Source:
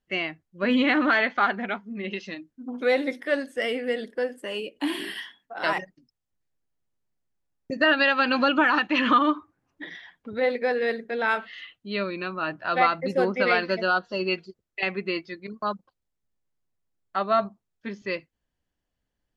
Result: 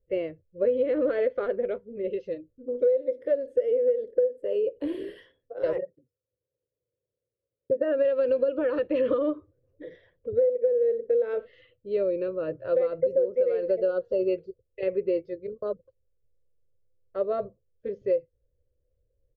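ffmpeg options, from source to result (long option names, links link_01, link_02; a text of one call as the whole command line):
ffmpeg -i in.wav -filter_complex "[0:a]asettb=1/sr,asplit=3[link_01][link_02][link_03];[link_01]atrim=end=5.764[link_04];[link_02]atrim=start=5.76:end=8.05,asetpts=PTS-STARTPTS,afade=type=in:duration=0.004:curve=qsin,afade=type=out:start_time=2.286:duration=0.004:curve=qsin,highpass=160,lowpass=2300[link_05];[link_03]atrim=start=8.046[link_06];[link_04][link_05]acrossfade=duration=0.004:curve1=hsin:curve2=qsin[link_07];[link_07][link_06]acrossfade=duration=0.004:curve1=qsin:curve2=hsin,asettb=1/sr,asplit=3[link_08][link_09][link_10];[link_08]atrim=end=10.334[link_11];[link_09]atrim=start=10.33:end=11.03,asetpts=PTS-STARTPTS,afade=type=in:duration=0.004:curve=qsin,afade=type=out:start_time=0.696:duration=0.004:curve=qsin,highshelf=frequency=2800:gain=-7[link_12];[link_10]atrim=start=11.026[link_13];[link_11][link_12]acrossfade=duration=0.004:curve1=hsin:curve2=qsin[link_14];[link_14][link_13]acrossfade=duration=0.004:curve1=qsin:curve2=hsin,firequalizer=gain_entry='entry(110,0);entry(200,-21);entry(510,12);entry(760,-25);entry(1100,-22);entry(6000,-26)':delay=0.05:min_phase=1,acompressor=threshold=-26dB:ratio=12,bass=frequency=250:gain=5,treble=frequency=4000:gain=-3,volume=5.5dB" out.wav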